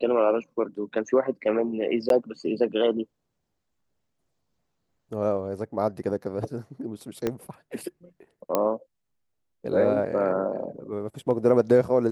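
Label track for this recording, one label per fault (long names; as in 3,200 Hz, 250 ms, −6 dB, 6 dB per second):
2.090000	2.100000	drop-out 12 ms
7.270000	7.270000	click −13 dBFS
8.550000	8.550000	click −9 dBFS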